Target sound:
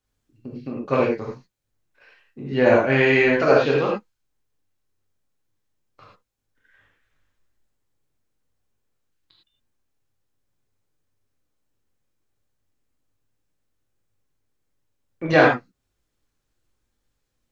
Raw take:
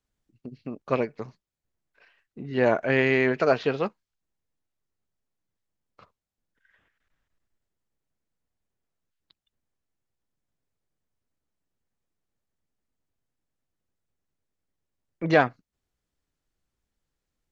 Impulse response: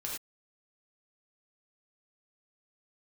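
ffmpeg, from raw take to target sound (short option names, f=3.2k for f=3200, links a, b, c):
-filter_complex "[1:a]atrim=start_sample=2205[a];[0:a][a]afir=irnorm=-1:irlink=0,volume=5dB"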